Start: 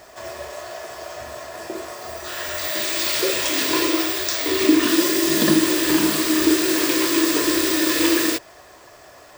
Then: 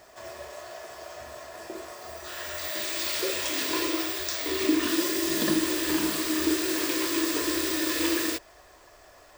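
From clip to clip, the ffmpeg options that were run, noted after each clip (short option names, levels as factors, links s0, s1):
-af "asubboost=boost=5.5:cutoff=52,volume=0.422"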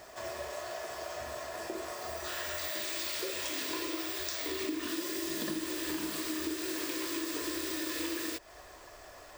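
-af "acompressor=threshold=0.0158:ratio=5,volume=1.26"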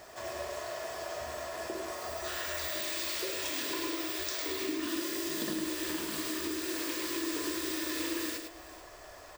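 -af "aecho=1:1:104|439:0.501|0.133"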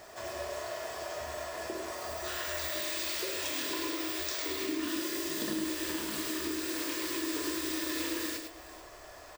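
-filter_complex "[0:a]asplit=2[s0][s1];[s1]adelay=28,volume=0.299[s2];[s0][s2]amix=inputs=2:normalize=0"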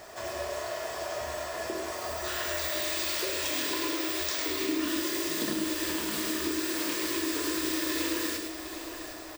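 -af "aecho=1:1:759|1518|2277|3036|3795:0.282|0.138|0.0677|0.0332|0.0162,volume=1.5"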